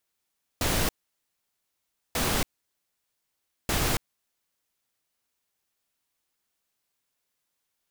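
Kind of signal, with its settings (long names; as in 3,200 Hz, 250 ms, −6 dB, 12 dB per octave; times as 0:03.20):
noise bursts pink, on 0.28 s, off 1.26 s, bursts 3, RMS −25.5 dBFS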